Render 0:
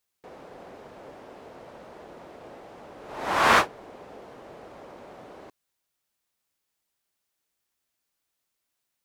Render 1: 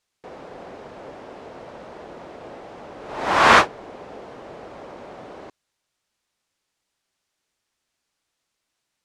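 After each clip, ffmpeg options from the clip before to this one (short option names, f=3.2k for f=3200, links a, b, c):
-af "lowpass=7.7k,volume=6dB"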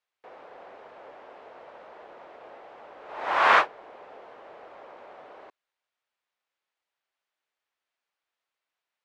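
-filter_complex "[0:a]acrossover=split=440 3500:gain=0.141 1 0.2[a][b][c];[a][b][c]amix=inputs=3:normalize=0,volume=-5dB"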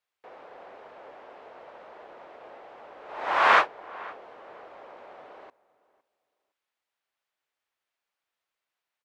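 -filter_complex "[0:a]asplit=2[a][b];[b]adelay=510,lowpass=f=2.1k:p=1,volume=-20.5dB,asplit=2[c][d];[d]adelay=510,lowpass=f=2.1k:p=1,volume=0.22[e];[a][c][e]amix=inputs=3:normalize=0"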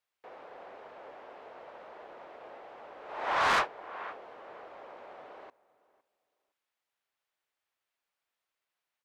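-af "asoftclip=type=tanh:threshold=-20.5dB,volume=-1.5dB"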